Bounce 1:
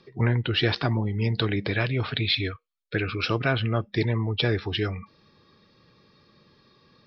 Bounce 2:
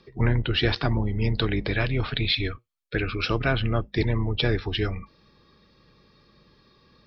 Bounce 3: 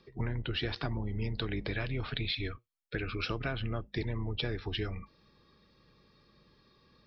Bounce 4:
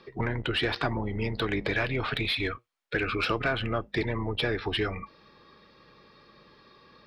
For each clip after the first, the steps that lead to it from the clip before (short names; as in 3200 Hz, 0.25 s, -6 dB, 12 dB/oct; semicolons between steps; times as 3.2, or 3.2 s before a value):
octaver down 2 oct, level -4 dB
compressor, threshold -24 dBFS, peak gain reduction 7.5 dB; gain -6 dB
overdrive pedal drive 15 dB, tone 1800 Hz, clips at -18 dBFS; gain +5 dB